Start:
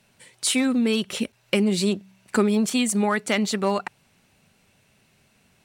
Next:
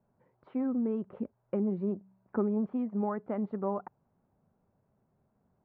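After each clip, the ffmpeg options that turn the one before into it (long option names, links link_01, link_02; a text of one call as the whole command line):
ffmpeg -i in.wav -af "lowpass=frequency=1100:width=0.5412,lowpass=frequency=1100:width=1.3066,volume=-9dB" out.wav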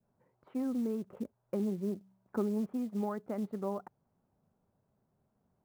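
ffmpeg -i in.wav -af "adynamicequalizer=threshold=0.00316:dfrequency=970:dqfactor=1.8:tfrequency=970:tqfactor=1.8:attack=5:release=100:ratio=0.375:range=2:mode=cutabove:tftype=bell,acrusher=bits=7:mode=log:mix=0:aa=0.000001,volume=-3dB" out.wav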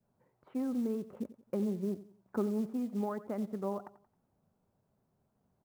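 ffmpeg -i in.wav -af "aecho=1:1:89|178|267:0.158|0.0586|0.0217" out.wav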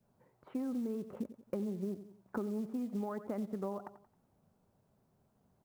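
ffmpeg -i in.wav -af "acompressor=threshold=-38dB:ratio=6,volume=3.5dB" out.wav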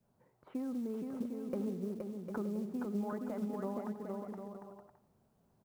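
ffmpeg -i in.wav -af "aecho=1:1:470|752|921.2|1023|1084:0.631|0.398|0.251|0.158|0.1,volume=-1.5dB" out.wav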